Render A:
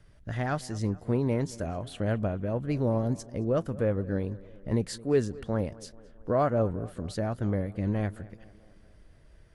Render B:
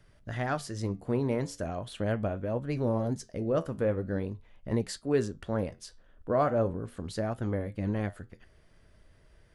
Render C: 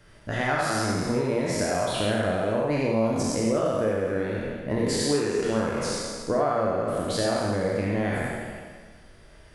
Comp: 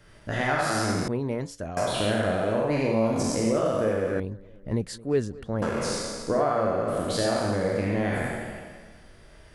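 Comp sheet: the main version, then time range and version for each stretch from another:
C
1.08–1.77 from B
4.2–5.62 from A

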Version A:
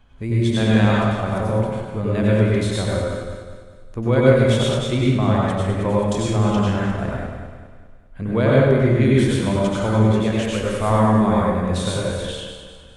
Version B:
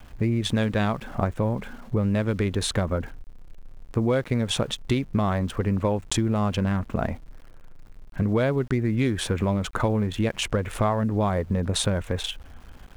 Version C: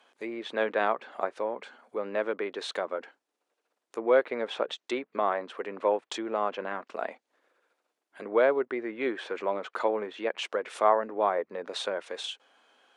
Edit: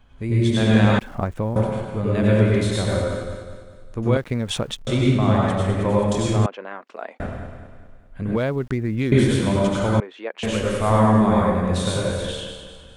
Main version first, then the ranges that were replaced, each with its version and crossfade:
A
0.99–1.56 from B
4.17–4.87 from B
6.46–7.2 from C
8.36–9.12 from B
10–10.43 from C

